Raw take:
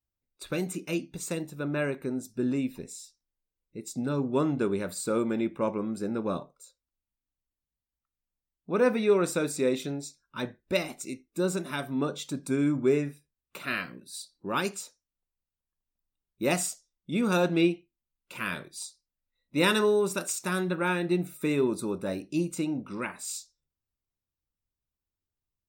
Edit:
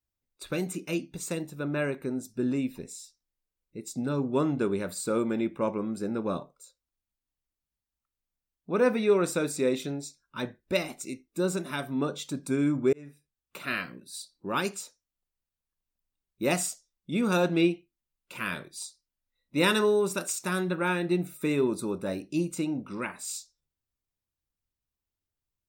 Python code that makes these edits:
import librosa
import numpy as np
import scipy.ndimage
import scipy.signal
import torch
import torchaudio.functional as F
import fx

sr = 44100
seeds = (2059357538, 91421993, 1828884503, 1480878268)

y = fx.edit(x, sr, fx.fade_in_span(start_s=12.93, length_s=0.79, curve='qsin'), tone=tone)